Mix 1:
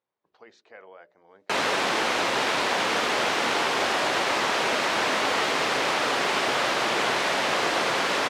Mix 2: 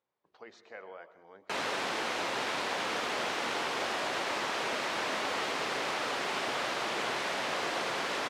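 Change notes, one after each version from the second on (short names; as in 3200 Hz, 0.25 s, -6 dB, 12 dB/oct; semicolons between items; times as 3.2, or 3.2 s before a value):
background -9.5 dB; reverb: on, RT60 0.70 s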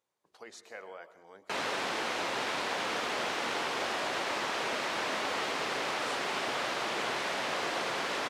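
speech: remove air absorption 200 m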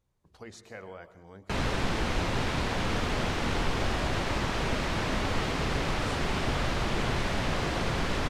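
master: remove HPF 450 Hz 12 dB/oct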